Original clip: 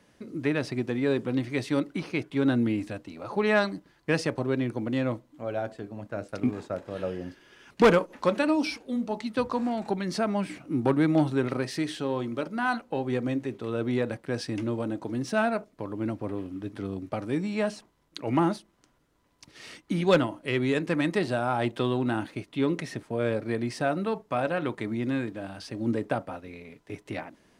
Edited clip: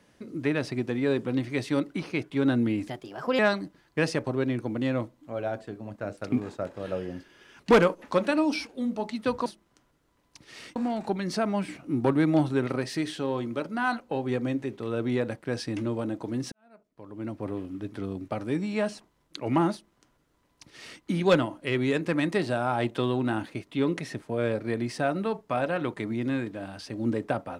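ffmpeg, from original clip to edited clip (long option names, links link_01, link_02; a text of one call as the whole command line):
ffmpeg -i in.wav -filter_complex "[0:a]asplit=6[link_01][link_02][link_03][link_04][link_05][link_06];[link_01]atrim=end=2.884[link_07];[link_02]atrim=start=2.88:end=3.5,asetpts=PTS-STARTPTS,asetrate=53802,aresample=44100,atrim=end_sample=22411,asetpts=PTS-STARTPTS[link_08];[link_03]atrim=start=3.496:end=9.572[link_09];[link_04]atrim=start=18.528:end=19.832[link_10];[link_05]atrim=start=9.568:end=15.33,asetpts=PTS-STARTPTS,afade=type=out:start_time=5.758:duration=0.004:curve=hsin[link_11];[link_06]atrim=start=15.33,asetpts=PTS-STARTPTS,afade=type=in:duration=0.95:curve=qua[link_12];[link_07][link_08]acrossfade=duration=0.004:curve1=hsin:curve2=hsin[link_13];[link_13][link_09]acrossfade=duration=0.004:curve1=hsin:curve2=hsin[link_14];[link_14][link_10]acrossfade=duration=0.004:curve1=hsin:curve2=hsin[link_15];[link_11][link_12]concat=n=2:v=0:a=1[link_16];[link_15][link_16]acrossfade=duration=0.004:curve1=hsin:curve2=hsin" out.wav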